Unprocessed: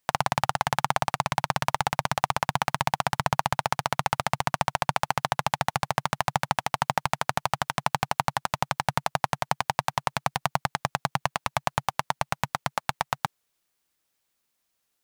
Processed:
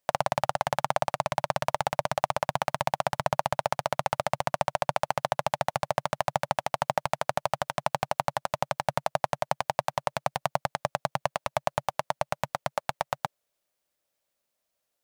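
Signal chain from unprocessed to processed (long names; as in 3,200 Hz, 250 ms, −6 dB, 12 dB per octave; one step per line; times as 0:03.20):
parametric band 590 Hz +12.5 dB 0.51 octaves
level −5 dB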